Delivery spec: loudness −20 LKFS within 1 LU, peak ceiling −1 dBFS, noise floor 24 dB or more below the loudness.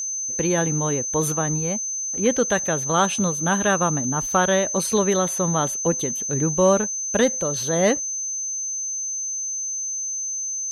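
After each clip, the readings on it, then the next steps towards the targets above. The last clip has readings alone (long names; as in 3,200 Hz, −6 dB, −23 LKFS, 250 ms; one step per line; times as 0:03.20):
interfering tone 6,200 Hz; level of the tone −25 dBFS; integrated loudness −21.5 LKFS; sample peak −6.0 dBFS; target loudness −20.0 LKFS
→ notch filter 6,200 Hz, Q 30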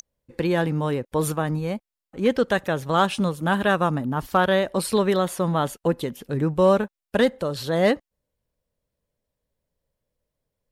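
interfering tone none found; integrated loudness −23.0 LKFS; sample peak −6.5 dBFS; target loudness −20.0 LKFS
→ level +3 dB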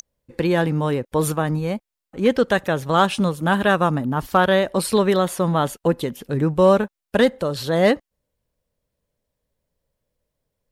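integrated loudness −20.0 LKFS; sample peak −3.5 dBFS; background noise floor −85 dBFS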